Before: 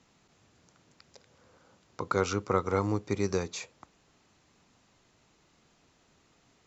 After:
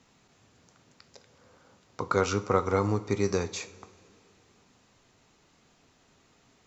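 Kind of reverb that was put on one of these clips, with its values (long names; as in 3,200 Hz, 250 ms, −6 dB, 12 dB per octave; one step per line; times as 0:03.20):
coupled-rooms reverb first 0.38 s, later 2.8 s, from −18 dB, DRR 9.5 dB
level +2 dB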